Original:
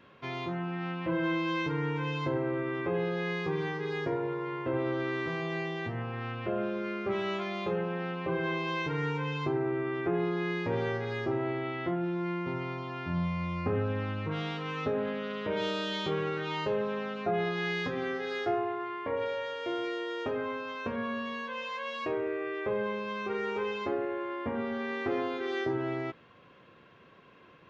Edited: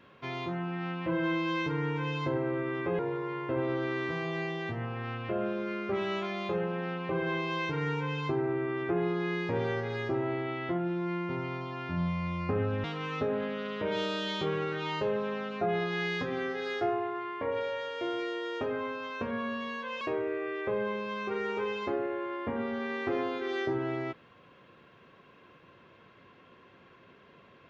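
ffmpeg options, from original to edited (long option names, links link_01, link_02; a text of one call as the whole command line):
ffmpeg -i in.wav -filter_complex "[0:a]asplit=4[link_01][link_02][link_03][link_04];[link_01]atrim=end=2.992[link_05];[link_02]atrim=start=4.158:end=14.012[link_06];[link_03]atrim=start=14.488:end=21.662[link_07];[link_04]atrim=start=21.998[link_08];[link_05][link_06]acrossfade=duration=0.004:curve1=hsin:curve2=hsin[link_09];[link_09][link_07]acrossfade=duration=0.004:curve1=hsin:curve2=hsin[link_10];[link_10][link_08]acrossfade=duration=0.004:curve1=hsin:curve2=hsin" out.wav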